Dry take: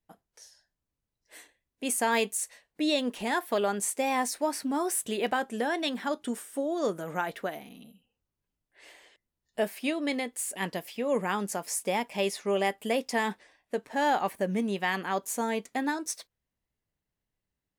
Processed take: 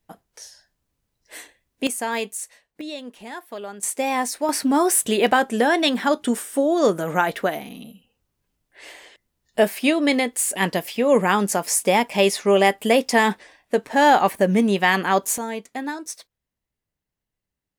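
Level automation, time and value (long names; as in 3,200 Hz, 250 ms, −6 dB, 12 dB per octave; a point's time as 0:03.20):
+11 dB
from 0:01.87 +0.5 dB
from 0:02.81 −6.5 dB
from 0:03.83 +5 dB
from 0:04.49 +11 dB
from 0:15.38 +1 dB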